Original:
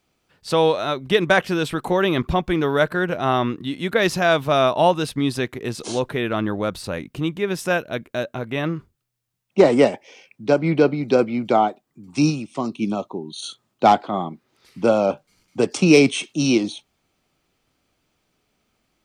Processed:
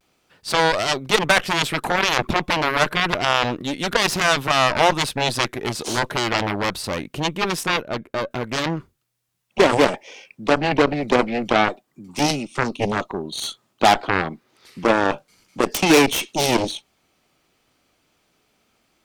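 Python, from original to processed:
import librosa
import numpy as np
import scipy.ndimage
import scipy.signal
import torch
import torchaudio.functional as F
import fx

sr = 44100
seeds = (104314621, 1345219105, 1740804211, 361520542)

p1 = fx.high_shelf(x, sr, hz=2100.0, db=-10.0, at=(7.64, 8.31))
p2 = fx.cheby_harmonics(p1, sr, harmonics=(6, 7), levels_db=(-18, -13), full_scale_db=-3.5)
p3 = fx.low_shelf(p2, sr, hz=190.0, db=-7.0)
p4 = fx.over_compress(p3, sr, threshold_db=-29.0, ratio=-1.0)
p5 = p3 + (p4 * librosa.db_to_amplitude(2.0))
p6 = fx.vibrato(p5, sr, rate_hz=0.33, depth_cents=26.0)
y = p6 * librosa.db_to_amplitude(-1.0)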